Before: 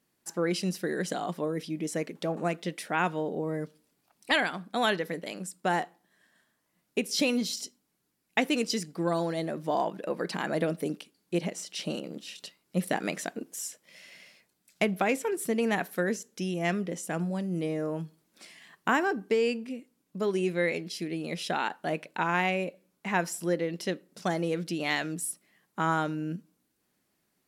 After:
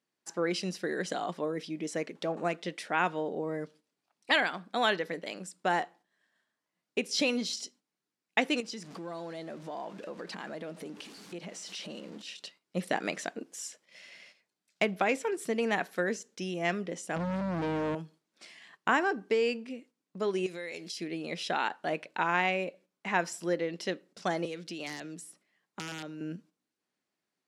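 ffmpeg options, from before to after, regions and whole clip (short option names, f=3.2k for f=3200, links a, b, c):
-filter_complex "[0:a]asettb=1/sr,asplit=3[a][b][c];[a]atrim=end=8.604[d];[b]atrim=start=8.6:end=12.22,asetpts=PTS-STARTPTS,afade=t=in:d=0.004:c=qsin,afade=t=out:st=3.616:d=0.004:c=qsin,aeval=exprs='val(0)+0.5*0.00841*sgn(val(0))':c=same,equalizer=f=210:t=o:w=0.33:g=5,acompressor=threshold=-38dB:ratio=3:attack=3.2:release=140:knee=1:detection=peak[e];[c]atrim=start=12.216[f];[d][e]acrossfade=d=0.004:c1=hsin:c2=qsin[g];[g][f]acrossfade=d=0.004:c1=qsin:c2=hsin,asettb=1/sr,asplit=3[h][i][j];[h]atrim=end=17.164[k];[i]atrim=start=17.16:end=17.95,asetpts=PTS-STARTPTS,afade=t=in:d=0.004:c=qsin,afade=t=out:st=0.786:d=0.004:c=qsin,equalizer=f=160:w=0.33:g=13.5,asoftclip=type=hard:threshold=-26.5dB,aeval=exprs='val(0)+0.0126*(sin(2*PI*50*n/s)+sin(2*PI*2*50*n/s)/2+sin(2*PI*3*50*n/s)/3+sin(2*PI*4*50*n/s)/4+sin(2*PI*5*50*n/s)/5)':c=same[l];[j]atrim=start=17.946[m];[k][l]acrossfade=d=0.004:c1=hsin:c2=qsin[n];[n][m]acrossfade=d=0.004:c1=qsin:c2=hsin,asettb=1/sr,asplit=3[o][p][q];[o]atrim=end=20.464[r];[p]atrim=start=20.46:end=20.97,asetpts=PTS-STARTPTS,afade=t=in:d=0.004:c=qsin,afade=t=out:st=0.506:d=0.004:c=qsin,bass=f=250:g=-3,treble=f=4k:g=13,acompressor=threshold=-35dB:ratio=5:attack=3.2:release=140:knee=1:detection=peak[s];[q]atrim=start=20.966[t];[r][s]acrossfade=d=0.004:c1=hsin:c2=qsin[u];[u][t]acrossfade=d=0.004:c1=qsin:c2=hsin,asettb=1/sr,asplit=3[v][w][x];[v]atrim=end=24.454[y];[w]atrim=start=24.45:end=26.21,asetpts=PTS-STARTPTS,afade=t=in:d=0.004:c=qsin,afade=t=out:st=1.756:d=0.004:c=qsin,aeval=exprs='(mod(9.44*val(0)+1,2)-1)/9.44':c=same,acrossover=split=510|2300[z][aa][ab];[z]acompressor=threshold=-37dB:ratio=4[ac];[aa]acompressor=threshold=-47dB:ratio=4[ad];[ab]acompressor=threshold=-40dB:ratio=4[ae];[ac][ad][ae]amix=inputs=3:normalize=0[af];[x]atrim=start=26.206[ag];[y][af]acrossfade=d=0.004:c1=hsin:c2=qsin[ah];[ah][ag]acrossfade=d=0.004:c1=qsin:c2=hsin,highpass=f=310:p=1,agate=range=-8dB:threshold=-55dB:ratio=16:detection=peak,lowpass=6.9k"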